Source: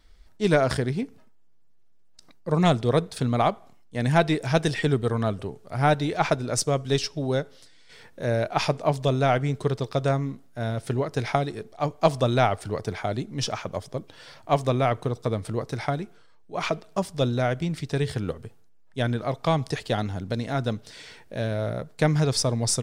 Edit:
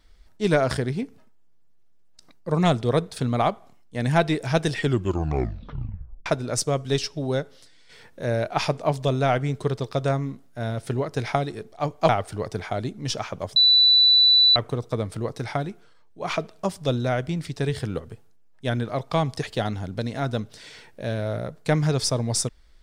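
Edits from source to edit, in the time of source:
4.8 tape stop 1.46 s
12.09–12.42 cut
13.89–14.89 bleep 3970 Hz -12.5 dBFS

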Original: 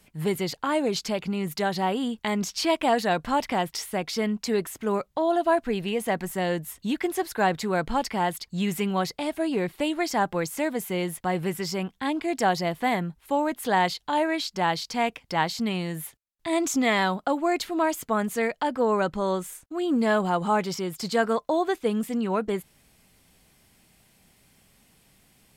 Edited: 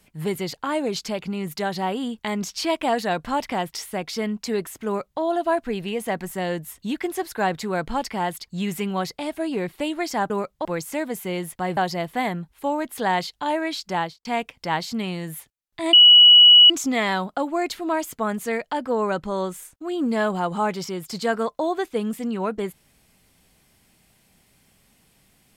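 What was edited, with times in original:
4.86–5.21 copy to 10.3
11.42–12.44 cut
14.64–14.92 studio fade out
16.6 add tone 2930 Hz -7 dBFS 0.77 s

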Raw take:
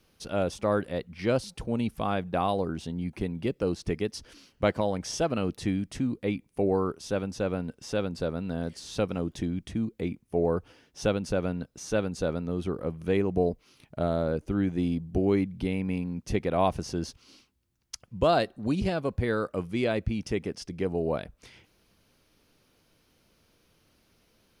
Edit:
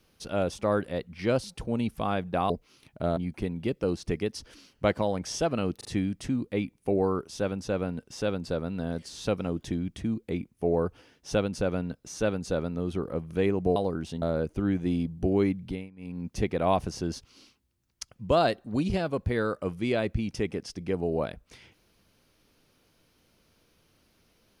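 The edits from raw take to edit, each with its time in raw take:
2.5–2.96 swap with 13.47–14.14
5.56 stutter 0.04 s, 3 plays
15.53–16.18 dip -22 dB, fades 0.29 s

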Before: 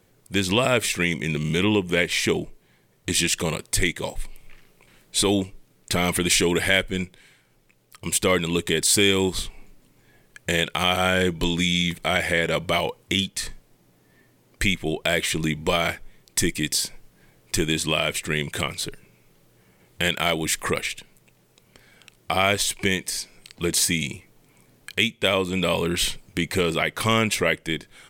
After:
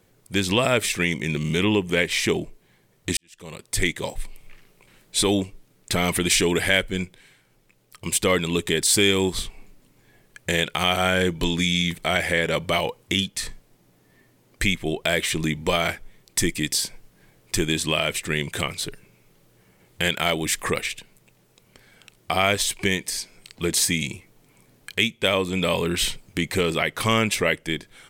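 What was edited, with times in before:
3.17–3.84 fade in quadratic

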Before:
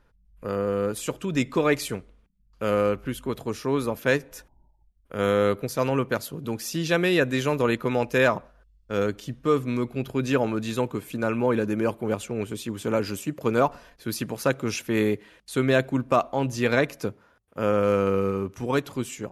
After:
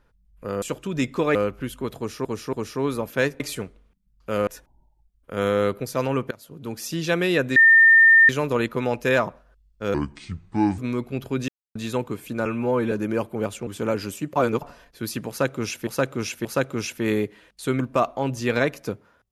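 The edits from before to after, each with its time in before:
0.62–1 cut
1.73–2.8 move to 4.29
3.42–3.7 loop, 3 plays
6.13–6.65 fade in, from -23 dB
7.38 add tone 1810 Hz -9.5 dBFS 0.73 s
9.03–9.62 speed 70%
10.32–10.59 mute
11.29–11.6 stretch 1.5×
12.35–12.72 cut
13.41–13.67 reverse
14.34–14.92 loop, 3 plays
15.69–15.96 cut

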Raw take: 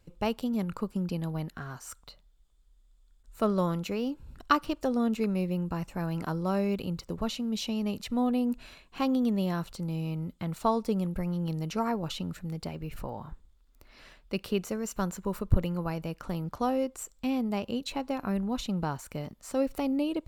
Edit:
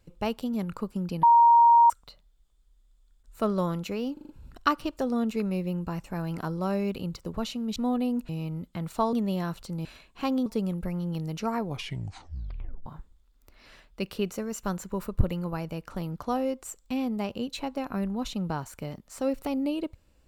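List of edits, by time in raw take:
1.23–1.9 bleep 937 Hz -13.5 dBFS
4.13 stutter 0.04 s, 5 plays
7.6–8.09 cut
8.62–9.23 swap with 9.95–10.79
11.91 tape stop 1.28 s

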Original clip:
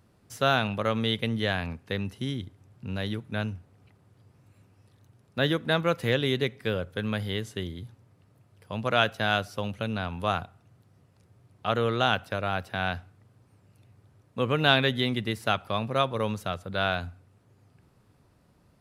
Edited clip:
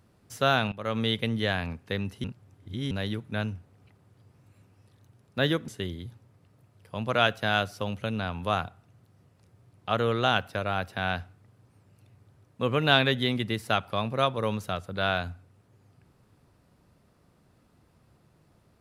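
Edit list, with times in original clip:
0.72–1 fade in, from -17.5 dB
2.24–2.91 reverse
5.68–7.45 cut

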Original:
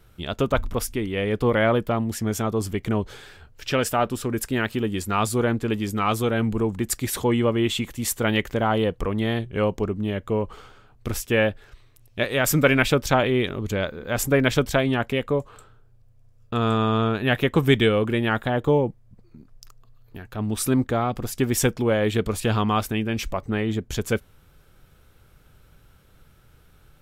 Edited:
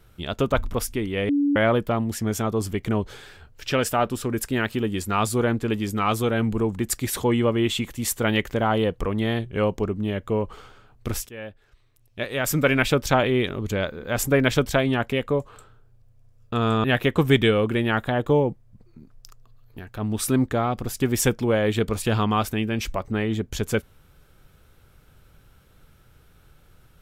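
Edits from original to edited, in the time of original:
1.29–1.56 bleep 286 Hz -17.5 dBFS
11.29–13.07 fade in, from -21 dB
16.84–17.22 cut

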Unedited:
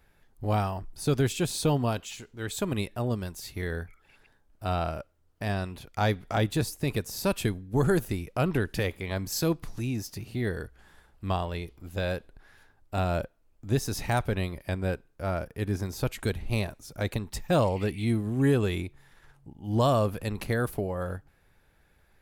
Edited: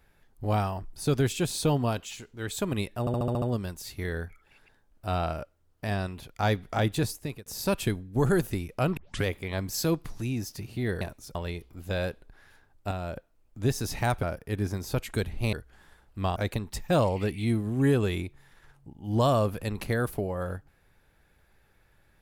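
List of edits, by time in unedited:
3 stutter 0.07 s, 7 plays
6.67–7.04 fade out
8.55 tape start 0.28 s
10.59–11.42 swap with 16.62–16.96
12.98–13.24 gain -7 dB
14.3–15.32 cut

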